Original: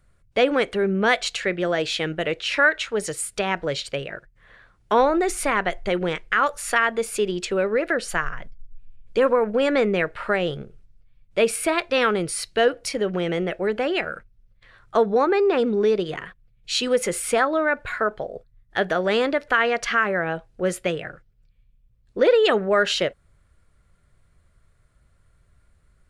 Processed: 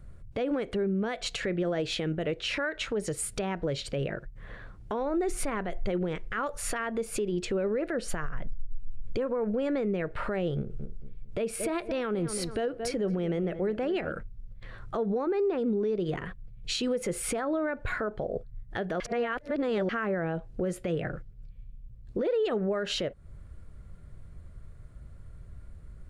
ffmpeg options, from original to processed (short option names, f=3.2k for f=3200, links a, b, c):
-filter_complex "[0:a]asettb=1/sr,asplit=3[a][b][c];[a]atrim=end=10.574[d];[b]atrim=start=10.57:end=14.12,asetpts=PTS-STARTPTS,afade=t=in:d=0.004:c=qsin,afade=t=out:st=3.546:d=0.004:c=qsin,asplit=2[e][f];[f]adelay=224,lowpass=f=1.7k:p=1,volume=-16dB,asplit=2[g][h];[h]adelay=224,lowpass=f=1.7k:p=1,volume=0.28,asplit=2[i][j];[j]adelay=224,lowpass=f=1.7k:p=1,volume=0.28[k];[e][g][i][k]amix=inputs=4:normalize=0,atrim=end_sample=156555[l];[c]atrim=start=14.116[m];[d][l]acrossfade=d=0.004:c1=hsin:c2=qsin[n];[n][m]acrossfade=d=0.004:c1=qsin:c2=hsin,asplit=3[o][p][q];[o]atrim=end=19.002[r];[p]atrim=start=18.998:end=19.892,asetpts=PTS-STARTPTS,areverse[s];[q]atrim=start=19.888[t];[r][s]acrossfade=d=0.004:c1=hsin:c2=hsin[u];[u][t]acrossfade=d=0.004:c1=hsin:c2=hsin,tiltshelf=f=640:g=7,acompressor=threshold=-34dB:ratio=2,alimiter=level_in=5dB:limit=-24dB:level=0:latency=1:release=128,volume=-5dB,volume=7dB"